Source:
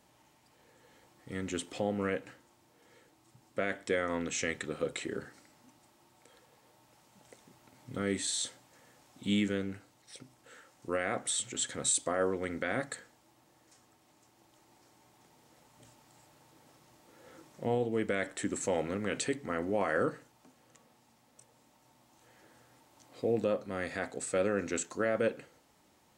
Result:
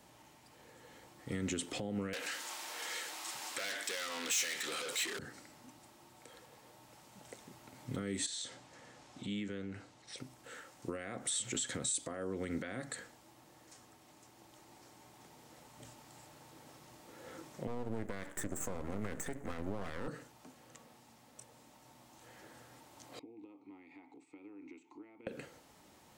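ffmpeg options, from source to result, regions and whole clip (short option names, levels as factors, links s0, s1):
-filter_complex "[0:a]asettb=1/sr,asplit=3[s0][s1][s2];[s0]atrim=end=2.134[s3];[s1]atrim=start=2.13:end=5.19,asetpts=PTS-STARTPTS,afade=t=in:d=0.004:c=qsin,afade=t=out:st=3.056:d=0.004:c=qsin,asplit=2[s4][s5];[s5]highpass=f=720:p=1,volume=31.6,asoftclip=type=tanh:threshold=0.112[s6];[s4][s6]amix=inputs=2:normalize=0,lowpass=f=7600:p=1,volume=0.501,highpass=f=1400:p=1[s7];[s2]atrim=start=5.186[s8];[s3][s7]acrossfade=d=0.004:c1=hsin:c2=qsin[s9];[s9][s8]acrossfade=d=0.004:c1=qsin:c2=hsin,asettb=1/sr,asplit=3[s10][s11][s12];[s10]atrim=end=8.264[s13];[s11]atrim=start=8.26:end=10.18,asetpts=PTS-STARTPTS,afade=t=in:d=0.004:c=qsin,afade=t=out:st=1.916:d=0.004:c=qsin,lowpass=7300,acompressor=threshold=0.00501:ratio=3:attack=3.2:release=140:knee=1:detection=peak[s14];[s12]atrim=start=10.176[s15];[s13][s14]acrossfade=d=0.004:c1=hsin:c2=qsin[s16];[s16][s15]acrossfade=d=0.004:c1=qsin:c2=hsin,asettb=1/sr,asplit=3[s17][s18][s19];[s17]atrim=end=17.674[s20];[s18]atrim=start=17.67:end=20.08,asetpts=PTS-STARTPTS,afade=t=in:d=0.004:c=qsin,afade=t=out:st=2.406:d=0.004:c=qsin,asuperstop=centerf=3600:order=20:qfactor=0.88,aeval=exprs='max(val(0),0)':c=same[s21];[s19]atrim=start=20.076[s22];[s20][s21]acrossfade=d=0.004:c1=hsin:c2=qsin[s23];[s23][s22]acrossfade=d=0.004:c1=qsin:c2=hsin,asettb=1/sr,asplit=3[s24][s25][s26];[s24]atrim=end=23.194[s27];[s25]atrim=start=23.19:end=25.27,asetpts=PTS-STARTPTS,afade=t=in:d=0.004:c=qsin,afade=t=out:st=2.076:d=0.004:c=qsin,equalizer=f=210:w=2.6:g=-9.5,acompressor=threshold=0.00708:ratio=4:attack=3.2:release=140:knee=1:detection=peak,asplit=3[s28][s29][s30];[s28]bandpass=f=300:t=q:w=8,volume=1[s31];[s29]bandpass=f=870:t=q:w=8,volume=0.501[s32];[s30]bandpass=f=2240:t=q:w=8,volume=0.355[s33];[s31][s32][s33]amix=inputs=3:normalize=0[s34];[s26]atrim=start=25.266[s35];[s27][s34]acrossfade=d=0.004:c1=hsin:c2=qsin[s36];[s36][s35]acrossfade=d=0.004:c1=qsin:c2=hsin,acompressor=threshold=0.0224:ratio=6,alimiter=level_in=2:limit=0.0631:level=0:latency=1:release=68,volume=0.501,acrossover=split=340|3000[s37][s38][s39];[s38]acompressor=threshold=0.00447:ratio=6[s40];[s37][s40][s39]amix=inputs=3:normalize=0,volume=1.68"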